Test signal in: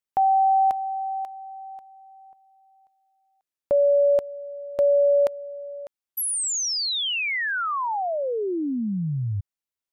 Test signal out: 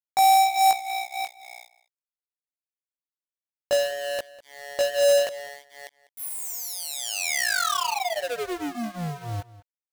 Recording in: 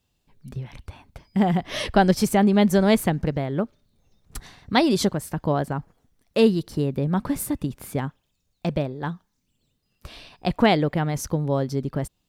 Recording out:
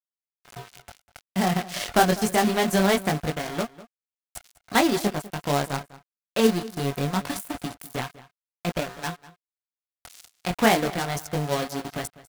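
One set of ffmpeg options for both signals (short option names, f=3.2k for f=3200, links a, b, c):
-filter_complex "[0:a]lowpass=11k,acrossover=split=2000[a][b];[b]acompressor=threshold=-39dB:ratio=5:attack=0.3:release=333:knee=1:detection=rms[c];[a][c]amix=inputs=2:normalize=0,flanger=delay=16.5:depth=6.6:speed=0.24,aeval=exprs='val(0)+0.0126*sin(2*PI*710*n/s)':c=same,aeval=exprs='sgn(val(0))*max(abs(val(0))-0.0178,0)':c=same,crystalizer=i=10:c=0,acrusher=bits=4:mode=log:mix=0:aa=0.000001,asplit=2[d][e];[e]adelay=198.3,volume=-18dB,highshelf=f=4k:g=-4.46[f];[d][f]amix=inputs=2:normalize=0"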